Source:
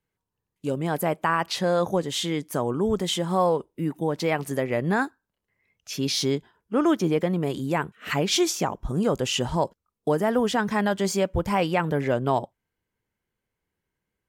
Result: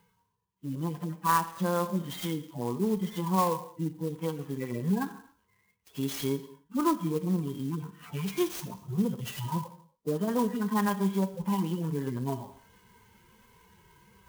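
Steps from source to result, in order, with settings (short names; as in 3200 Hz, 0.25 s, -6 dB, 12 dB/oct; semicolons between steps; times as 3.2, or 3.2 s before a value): median-filter separation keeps harmonic; reverse; upward compressor, threshold -35 dBFS; reverse; added harmonics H 3 -22 dB, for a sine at -11 dBFS; in parallel at -1.5 dB: compressor, threshold -32 dBFS, peak gain reduction 14 dB; on the sum: thirty-one-band EQ 200 Hz +7 dB, 630 Hz -9 dB, 1000 Hz +11 dB, 3150 Hz +5 dB, 6300 Hz +10 dB; non-linear reverb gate 0.3 s falling, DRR 11 dB; clock jitter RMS 0.038 ms; gain -6.5 dB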